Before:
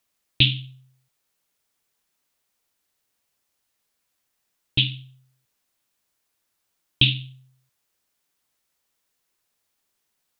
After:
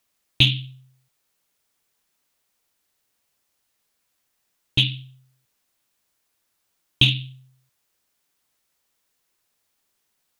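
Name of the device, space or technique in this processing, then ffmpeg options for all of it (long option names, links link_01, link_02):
parallel distortion: -filter_complex "[0:a]asplit=2[link_01][link_02];[link_02]asoftclip=type=hard:threshold=-17dB,volume=-10dB[link_03];[link_01][link_03]amix=inputs=2:normalize=0"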